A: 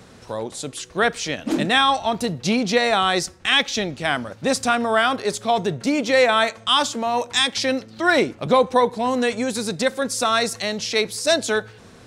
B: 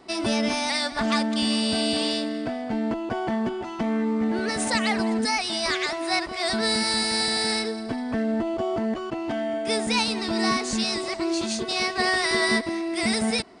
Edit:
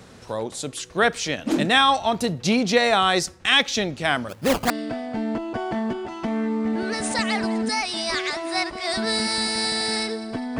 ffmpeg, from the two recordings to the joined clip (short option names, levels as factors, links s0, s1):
-filter_complex "[0:a]asplit=3[s0][s1][s2];[s0]afade=t=out:st=4.28:d=0.02[s3];[s1]acrusher=samples=17:mix=1:aa=0.000001:lfo=1:lforange=17:lforate=3.1,afade=t=in:st=4.28:d=0.02,afade=t=out:st=4.7:d=0.02[s4];[s2]afade=t=in:st=4.7:d=0.02[s5];[s3][s4][s5]amix=inputs=3:normalize=0,apad=whole_dur=10.59,atrim=end=10.59,atrim=end=4.702[s6];[1:a]atrim=start=2.258:end=8.15[s7];[s6][s7]acrossfade=d=0.004:c1=hsin:c2=hsin"